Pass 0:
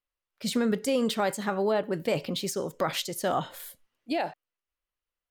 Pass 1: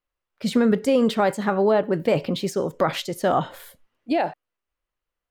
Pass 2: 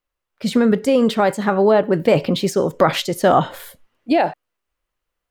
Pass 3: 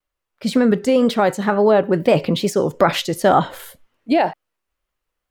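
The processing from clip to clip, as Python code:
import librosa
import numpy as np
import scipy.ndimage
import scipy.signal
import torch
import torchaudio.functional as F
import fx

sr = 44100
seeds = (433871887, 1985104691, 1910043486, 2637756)

y1 = fx.high_shelf(x, sr, hz=3200.0, db=-11.5)
y1 = F.gain(torch.from_numpy(y1), 7.5).numpy()
y2 = fx.rider(y1, sr, range_db=10, speed_s=2.0)
y2 = F.gain(torch.from_numpy(y2), 5.5).numpy()
y3 = fx.wow_flutter(y2, sr, seeds[0], rate_hz=2.1, depth_cents=90.0)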